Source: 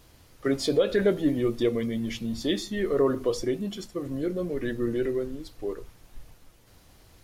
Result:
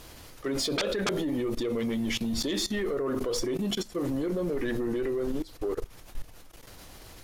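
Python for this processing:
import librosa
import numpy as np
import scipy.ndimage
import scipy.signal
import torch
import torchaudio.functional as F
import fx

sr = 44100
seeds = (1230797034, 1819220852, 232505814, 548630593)

y = fx.peak_eq(x, sr, hz=98.0, db=-5.5, octaves=2.5)
y = fx.level_steps(y, sr, step_db=20)
y = fx.fold_sine(y, sr, drive_db=15, ceiling_db=-17.0)
y = y * 10.0 ** (-6.5 / 20.0)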